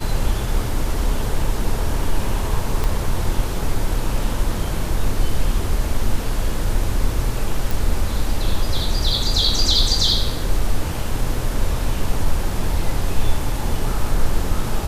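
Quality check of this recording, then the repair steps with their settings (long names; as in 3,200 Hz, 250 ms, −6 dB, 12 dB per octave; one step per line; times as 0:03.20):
0:02.84: click −9 dBFS
0:07.71: click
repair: click removal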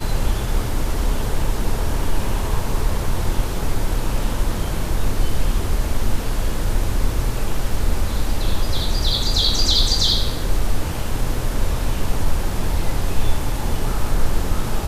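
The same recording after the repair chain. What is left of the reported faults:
0:02.84: click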